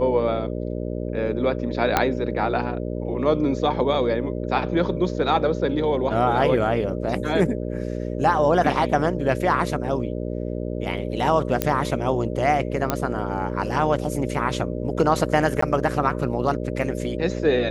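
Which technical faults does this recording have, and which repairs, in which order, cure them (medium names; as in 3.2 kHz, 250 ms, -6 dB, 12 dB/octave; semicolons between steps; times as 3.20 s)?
buzz 60 Hz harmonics 10 -28 dBFS
1.97 s: pop -3 dBFS
11.62 s: pop -5 dBFS
12.90 s: pop -7 dBFS
15.61–15.62 s: dropout 14 ms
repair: de-click; de-hum 60 Hz, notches 10; interpolate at 15.61 s, 14 ms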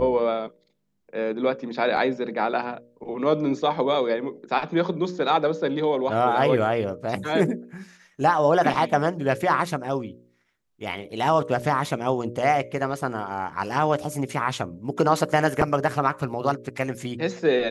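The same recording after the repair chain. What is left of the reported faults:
1.97 s: pop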